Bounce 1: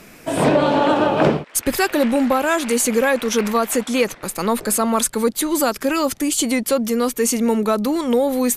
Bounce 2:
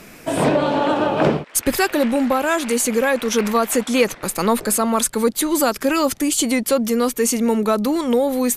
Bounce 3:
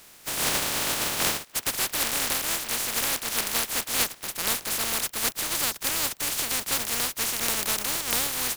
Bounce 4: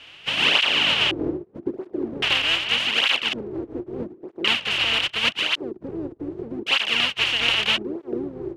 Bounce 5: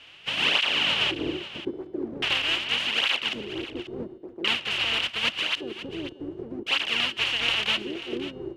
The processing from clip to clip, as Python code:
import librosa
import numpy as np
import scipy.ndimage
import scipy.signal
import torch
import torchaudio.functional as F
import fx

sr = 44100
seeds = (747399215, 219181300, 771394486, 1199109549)

y1 = fx.rider(x, sr, range_db=3, speed_s=0.5)
y2 = fx.spec_flatten(y1, sr, power=0.12)
y2 = y2 * librosa.db_to_amplitude(-8.5)
y3 = fx.filter_lfo_lowpass(y2, sr, shape='square', hz=0.45, low_hz=360.0, high_hz=2900.0, q=7.0)
y3 = fx.flanger_cancel(y3, sr, hz=0.81, depth_ms=5.6)
y3 = y3 * librosa.db_to_amplitude(5.5)
y4 = fx.comb_fb(y3, sr, f0_hz=190.0, decay_s=1.5, harmonics='all', damping=0.0, mix_pct=40)
y4 = y4 + 10.0 ** (-14.5 / 20.0) * np.pad(y4, (int(538 * sr / 1000.0), 0))[:len(y4)]